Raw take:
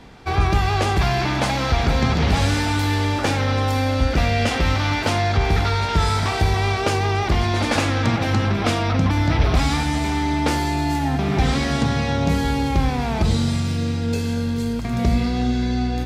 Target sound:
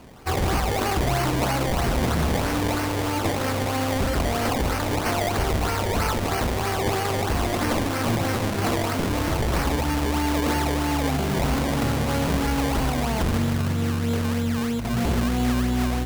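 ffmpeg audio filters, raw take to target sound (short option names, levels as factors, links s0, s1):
-af "acrusher=samples=23:mix=1:aa=0.000001:lfo=1:lforange=23:lforate=3.1,aeval=exprs='0.168*(abs(mod(val(0)/0.168+3,4)-2)-1)':c=same,bandreject=f=50:t=h:w=6,bandreject=f=100:t=h:w=6,bandreject=f=150:t=h:w=6,bandreject=f=200:t=h:w=6,volume=0.891"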